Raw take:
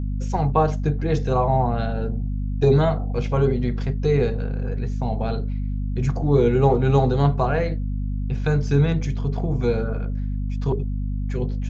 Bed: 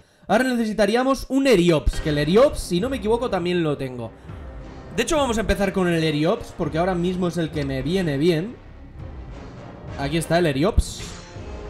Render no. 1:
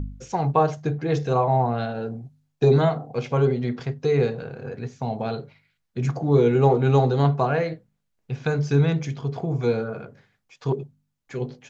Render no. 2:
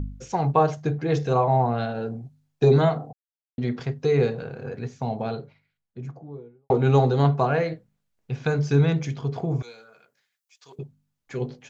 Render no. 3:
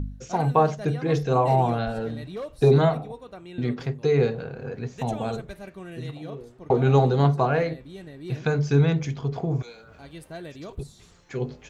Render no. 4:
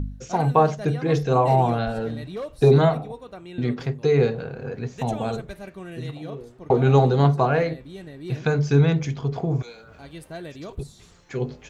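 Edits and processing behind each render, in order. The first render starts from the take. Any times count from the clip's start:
de-hum 50 Hz, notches 5
3.13–3.58 mute; 4.88–6.7 studio fade out; 9.62–10.79 differentiator
add bed -19.5 dB
gain +2 dB

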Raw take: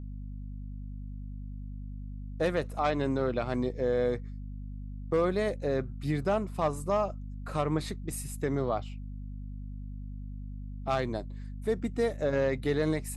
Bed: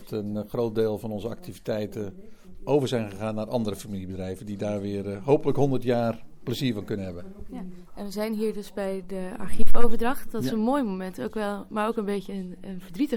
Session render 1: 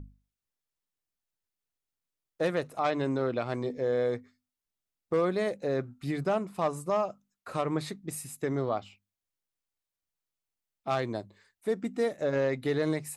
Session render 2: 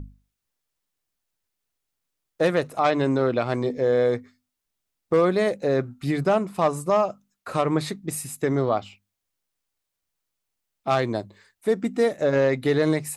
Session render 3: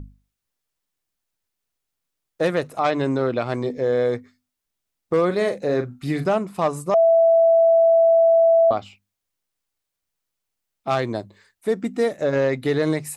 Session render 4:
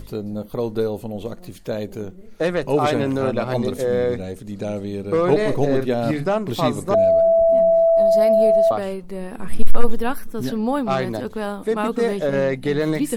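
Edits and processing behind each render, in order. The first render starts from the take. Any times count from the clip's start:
notches 50/100/150/200/250 Hz
gain +7.5 dB
5.26–6.26 doubler 40 ms -8.5 dB; 6.94–8.71 bleep 662 Hz -11.5 dBFS
add bed +2.5 dB

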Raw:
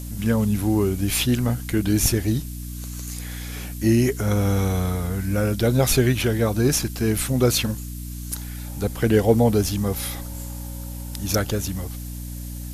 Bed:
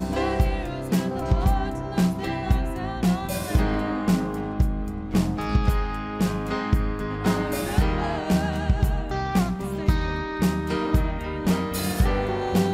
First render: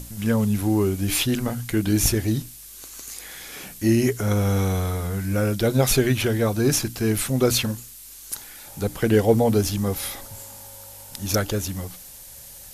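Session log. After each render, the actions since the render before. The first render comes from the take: notches 60/120/180/240/300 Hz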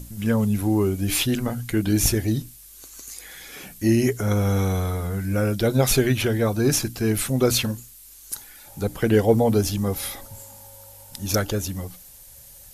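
denoiser 6 dB, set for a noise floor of -43 dBFS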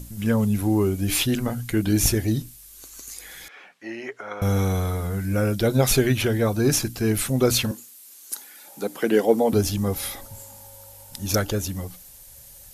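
3.48–4.42 BPF 770–2100 Hz; 7.71–9.53 HPF 220 Hz 24 dB/oct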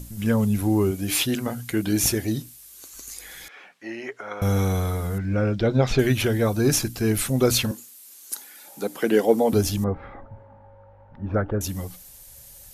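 0.91–2.94 HPF 170 Hz 6 dB/oct; 5.18–5.99 air absorption 180 m; 9.84–11.61 LPF 1600 Hz 24 dB/oct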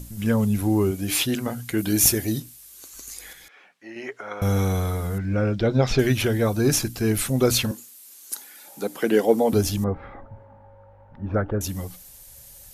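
1.78–2.4 high shelf 8600 Hz +9.5 dB; 3.33–3.96 gain -6 dB; 5.72–6.2 bell 5300 Hz +6.5 dB 0.24 oct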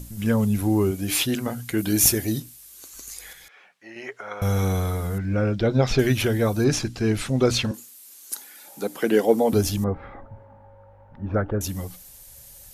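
3.08–4.63 bell 280 Hz -6.5 dB; 6.64–7.74 LPF 5800 Hz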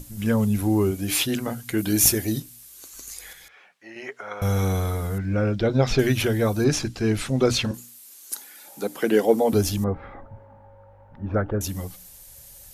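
notches 60/120/180/240 Hz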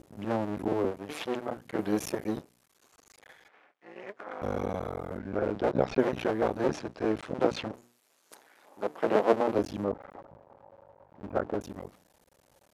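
cycle switcher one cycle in 2, muted; band-pass 620 Hz, Q 0.74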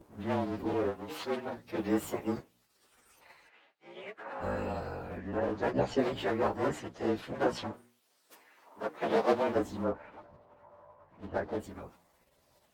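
inharmonic rescaling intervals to 108%; LFO bell 0.92 Hz 950–4800 Hz +6 dB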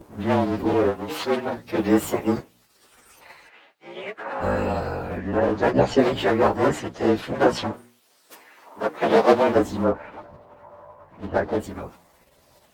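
gain +11 dB

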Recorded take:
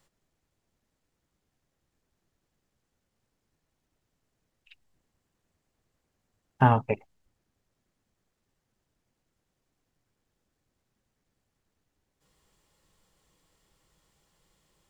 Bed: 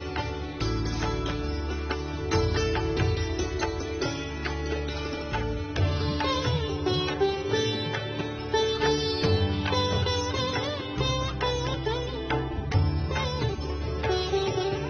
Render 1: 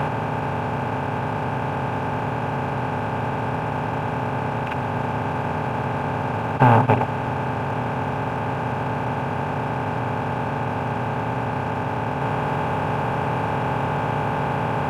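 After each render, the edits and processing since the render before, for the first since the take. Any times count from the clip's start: per-bin compression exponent 0.2; sample leveller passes 1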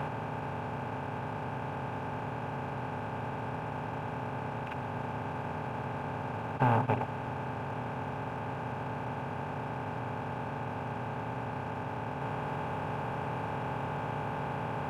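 gain -12 dB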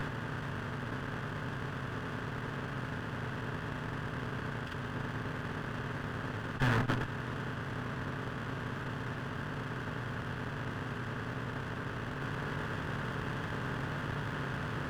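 minimum comb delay 0.65 ms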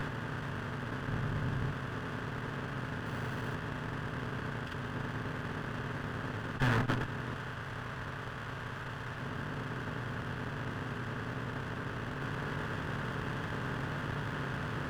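1.08–1.72 low shelf 170 Hz +9.5 dB; 3.06–3.55 zero-crossing step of -48.5 dBFS; 7.34–9.2 bell 250 Hz -7 dB 1.7 oct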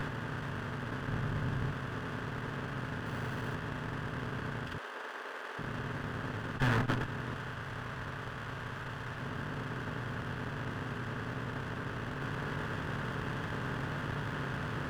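4.78–5.59 HPF 410 Hz 24 dB/oct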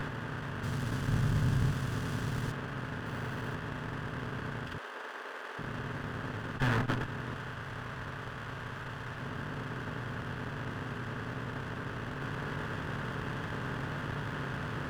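0.63–2.52 tone controls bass +7 dB, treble +13 dB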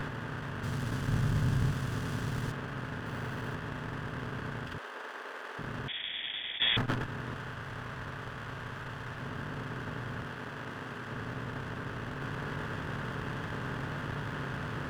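5.88–6.77 inverted band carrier 3500 Hz; 10.27–11.11 low shelf 140 Hz -11 dB

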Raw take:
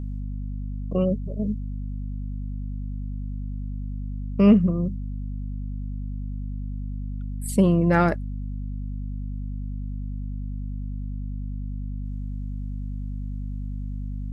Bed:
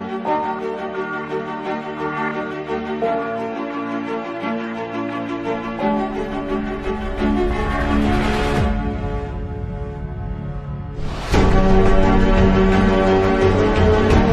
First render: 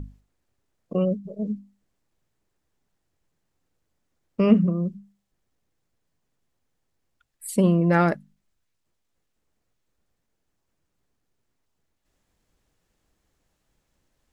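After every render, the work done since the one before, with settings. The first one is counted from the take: notches 50/100/150/200/250 Hz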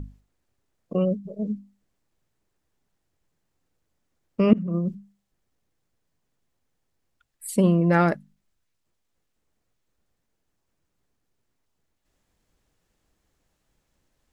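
4.53–4.95 negative-ratio compressor -27 dBFS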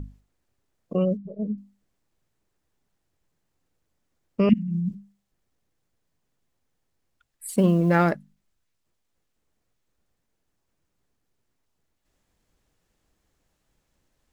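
1.17–1.58 tape spacing loss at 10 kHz 21 dB; 4.49–4.91 inverse Chebyshev band-stop 390–1200 Hz; 7.48–8.12 G.711 law mismatch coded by A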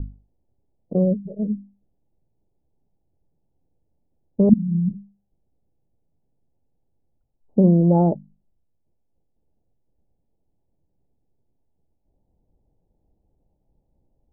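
Chebyshev low-pass 860 Hz, order 5; low shelf 400 Hz +7 dB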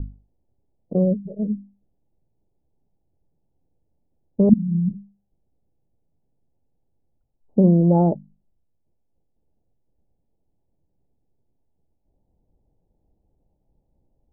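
nothing audible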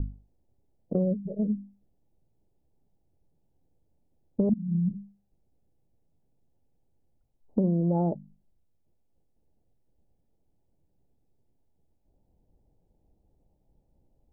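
compressor 4:1, threshold -24 dBFS, peak gain reduction 14 dB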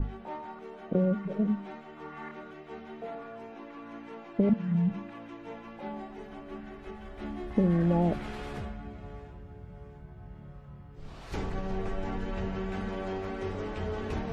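add bed -20 dB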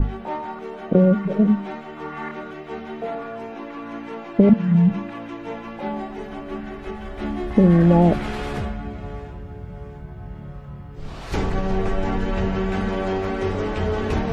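gain +11 dB; limiter -3 dBFS, peak gain reduction 1.5 dB

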